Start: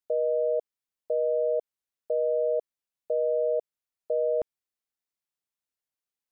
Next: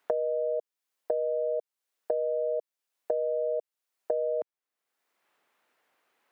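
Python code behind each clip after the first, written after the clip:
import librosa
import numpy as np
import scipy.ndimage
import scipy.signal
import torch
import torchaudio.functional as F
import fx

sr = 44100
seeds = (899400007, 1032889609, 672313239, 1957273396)

y = scipy.signal.sosfilt(scipy.signal.butter(2, 360.0, 'highpass', fs=sr, output='sos'), x)
y = fx.band_squash(y, sr, depth_pct=100)
y = F.gain(torch.from_numpy(y), -2.5).numpy()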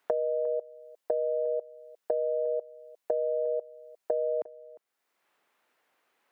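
y = x + 10.0 ** (-20.0 / 20.0) * np.pad(x, (int(354 * sr / 1000.0), 0))[:len(x)]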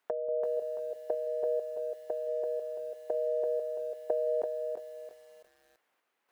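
y = fx.tremolo_random(x, sr, seeds[0], hz=3.5, depth_pct=55)
y = fx.echo_crushed(y, sr, ms=336, feedback_pct=35, bits=10, wet_db=-5)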